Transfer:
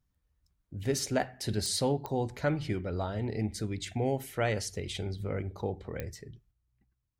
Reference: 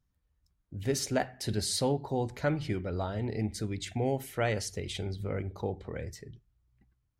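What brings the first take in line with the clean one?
click removal
level 0 dB, from 0:06.51 +6 dB

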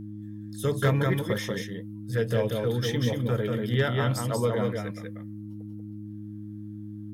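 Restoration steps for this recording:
clipped peaks rebuilt −15.5 dBFS
hum removal 104.6 Hz, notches 3
echo removal 188 ms −3.5 dB

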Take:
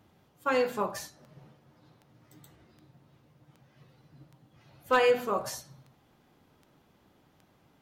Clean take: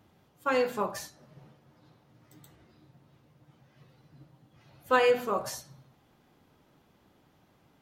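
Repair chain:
clipped peaks rebuilt −13 dBFS
click removal

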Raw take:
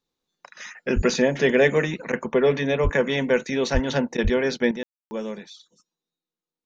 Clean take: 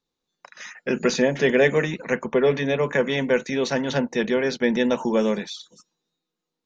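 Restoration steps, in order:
high-pass at the plosives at 0:00.95/0:02.83/0:03.73/0:04.23/0:04.88
ambience match 0:04.83–0:05.11
repair the gap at 0:02.12/0:04.17, 10 ms
level 0 dB, from 0:04.71 +9.5 dB

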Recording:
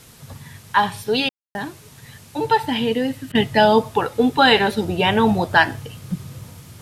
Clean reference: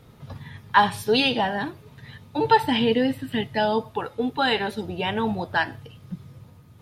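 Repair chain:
ambience match 0:01.29–0:01.55
repair the gap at 0:01.29/0:03.32, 28 ms
downward expander −37 dBFS, range −21 dB
level correction −8.5 dB, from 0:03.30

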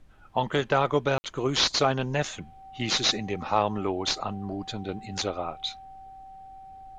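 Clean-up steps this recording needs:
notch filter 770 Hz, Q 30
ambience match 0:01.18–0:01.24
downward expander −39 dBFS, range −21 dB

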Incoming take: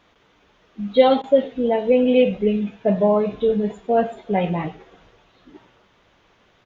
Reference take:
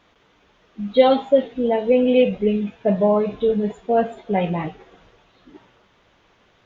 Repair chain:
repair the gap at 0:01.22, 16 ms
echo removal 99 ms −21 dB

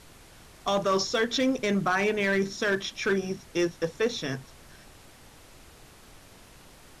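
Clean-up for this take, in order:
clipped peaks rebuilt −18.5 dBFS
noise reduction from a noise print 21 dB

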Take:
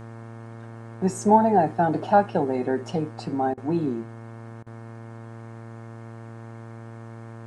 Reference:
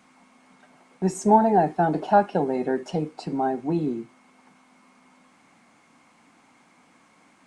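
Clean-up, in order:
hum removal 114.2 Hz, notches 16
repair the gap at 0:03.54/0:04.63, 34 ms

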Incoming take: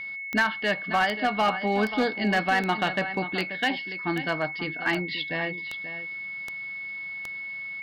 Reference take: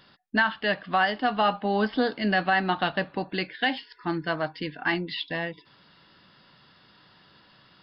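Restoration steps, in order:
clipped peaks rebuilt −16.5 dBFS
click removal
notch filter 2,200 Hz, Q 30
echo removal 534 ms −12 dB

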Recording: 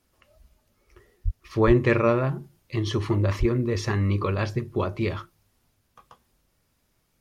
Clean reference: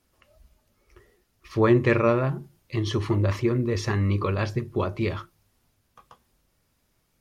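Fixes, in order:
high-pass at the plosives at 0:01.24/0:01.66/0:03.39

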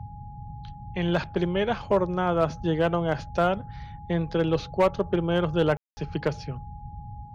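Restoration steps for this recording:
clipped peaks rebuilt −14 dBFS
notch filter 830 Hz, Q 30
ambience match 0:05.77–0:05.97
noise reduction from a noise print 30 dB

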